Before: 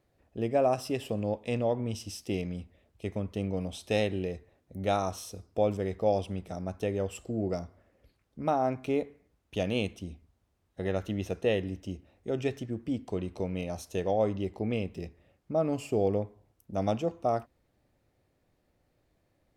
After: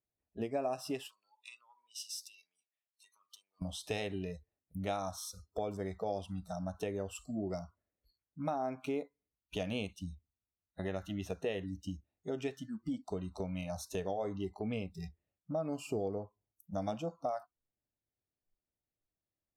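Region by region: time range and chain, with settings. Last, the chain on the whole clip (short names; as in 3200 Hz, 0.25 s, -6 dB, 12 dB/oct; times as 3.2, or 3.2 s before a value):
1.08–3.62 compressor, threshold -38 dBFS + HPF 1400 Hz + notch 2100 Hz, Q 17
whole clip: spectral noise reduction 27 dB; notch 530 Hz, Q 12; compressor 2.5:1, threshold -40 dBFS; gain +2.5 dB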